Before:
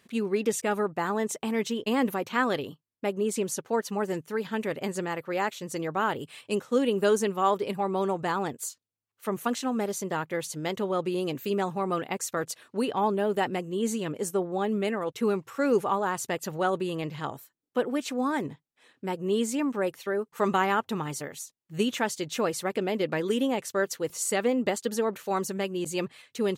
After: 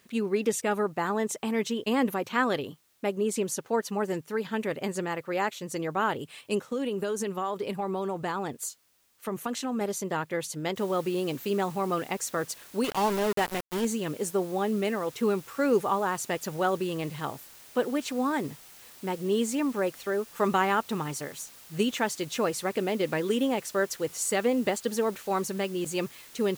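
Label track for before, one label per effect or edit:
6.650000	9.810000	compressor, threshold -26 dBFS
10.760000	10.760000	noise floor step -68 dB -51 dB
12.840000	13.850000	sample gate under -28.5 dBFS

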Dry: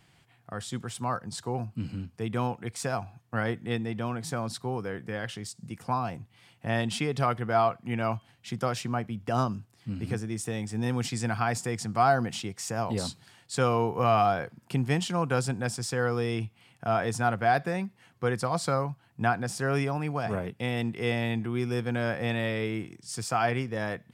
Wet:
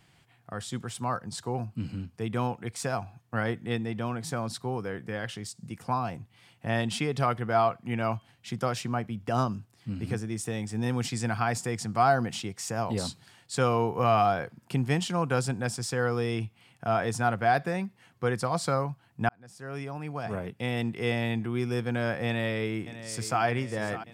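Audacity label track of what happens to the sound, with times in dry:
19.290000	20.730000	fade in linear
22.260000	23.430000	echo throw 0.6 s, feedback 65%, level -13 dB

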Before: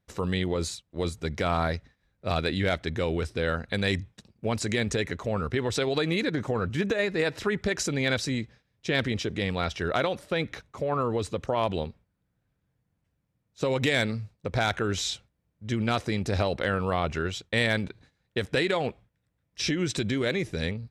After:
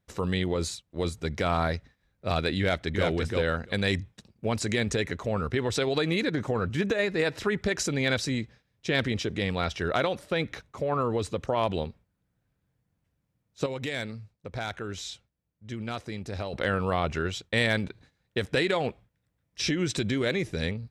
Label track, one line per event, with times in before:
2.600000	3.070000	echo throw 0.34 s, feedback 10%, level -2.5 dB
13.660000	16.530000	gain -8 dB

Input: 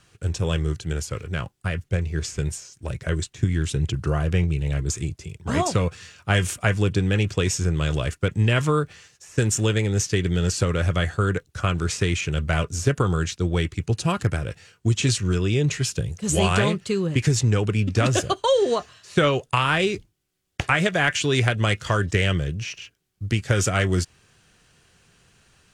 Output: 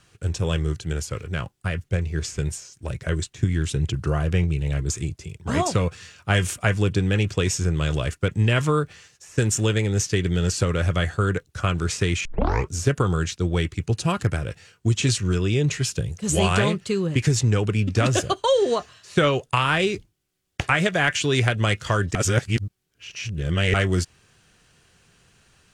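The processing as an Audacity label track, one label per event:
12.250000	12.250000	tape start 0.45 s
22.150000	23.740000	reverse

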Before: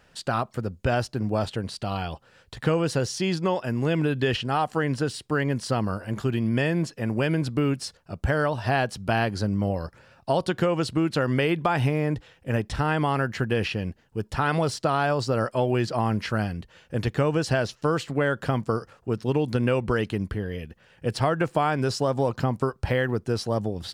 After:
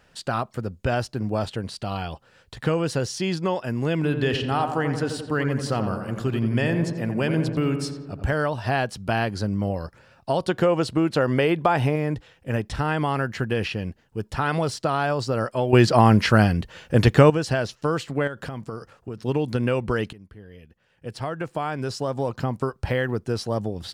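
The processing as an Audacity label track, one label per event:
3.950000	8.330000	darkening echo 87 ms, feedback 68%, level -7 dB
10.400000	11.960000	dynamic EQ 620 Hz, up to +5 dB, over -36 dBFS, Q 0.73
15.730000	17.300000	gain +9.5 dB
18.270000	19.200000	compressor 10:1, threshold -28 dBFS
20.130000	22.880000	fade in, from -20.5 dB

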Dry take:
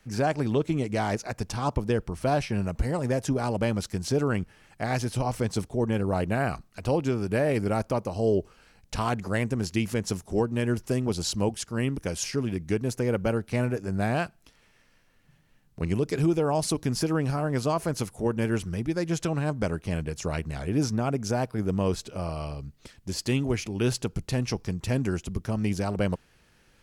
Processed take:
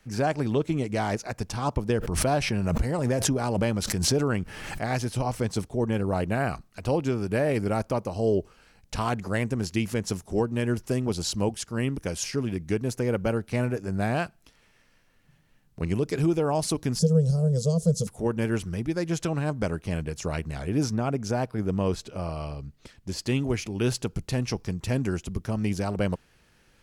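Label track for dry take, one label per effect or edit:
1.890000	4.820000	backwards sustainer at most 32 dB/s
16.990000	18.070000	EQ curve 110 Hz 0 dB, 180 Hz +13 dB, 310 Hz -27 dB, 480 Hz +8 dB, 810 Hz -19 dB, 1300 Hz -20 dB, 2300 Hz -28 dB, 3400 Hz -5 dB, 7400 Hz +7 dB, 14000 Hz -9 dB
20.940000	23.360000	high shelf 6300 Hz -5 dB

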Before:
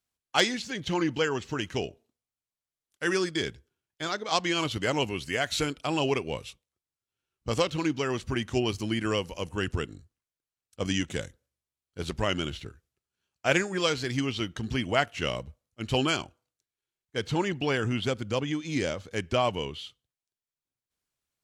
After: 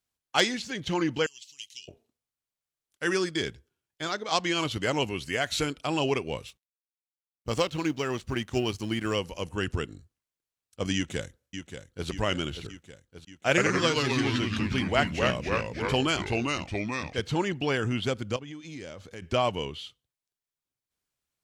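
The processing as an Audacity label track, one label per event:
1.260000	1.880000	inverse Chebyshev high-pass stop band from 1600 Hz
6.470000	9.160000	G.711 law mismatch coded by A
10.950000	12.080000	echo throw 0.58 s, feedback 65%, level -9 dB
13.490000	17.200000	echoes that change speed 84 ms, each echo -2 st, echoes 3
18.360000	19.220000	compressor 3:1, threshold -41 dBFS

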